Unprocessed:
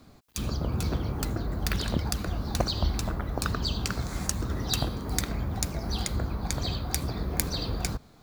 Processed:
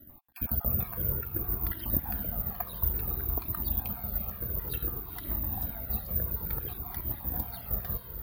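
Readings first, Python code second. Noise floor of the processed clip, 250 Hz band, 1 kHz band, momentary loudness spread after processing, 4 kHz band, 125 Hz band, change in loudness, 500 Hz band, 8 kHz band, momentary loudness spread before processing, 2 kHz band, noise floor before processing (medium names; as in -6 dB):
-47 dBFS, -8.5 dB, -8.0 dB, 5 LU, -19.0 dB, -6.5 dB, -0.5 dB, -8.5 dB, -20.0 dB, 3 LU, -11.0 dB, -55 dBFS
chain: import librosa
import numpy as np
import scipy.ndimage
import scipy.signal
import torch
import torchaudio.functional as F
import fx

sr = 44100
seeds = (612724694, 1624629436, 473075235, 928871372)

y = fx.spec_dropout(x, sr, seeds[0], share_pct=38)
y = fx.low_shelf(y, sr, hz=150.0, db=-4.0)
y = fx.echo_diffused(y, sr, ms=456, feedback_pct=57, wet_db=-8.0)
y = fx.rider(y, sr, range_db=5, speed_s=2.0)
y = fx.air_absorb(y, sr, metres=460.0)
y = (np.kron(y[::3], np.eye(3)[0]) * 3)[:len(y)]
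y = fx.comb_cascade(y, sr, direction='falling', hz=0.57)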